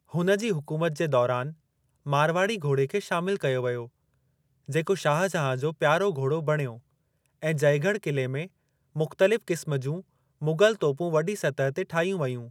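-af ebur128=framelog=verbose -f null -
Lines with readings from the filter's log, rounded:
Integrated loudness:
  I:         -26.5 LUFS
  Threshold: -36.9 LUFS
Loudness range:
  LRA:         1.5 LU
  Threshold: -47.3 LUFS
  LRA low:   -28.0 LUFS
  LRA high:  -26.5 LUFS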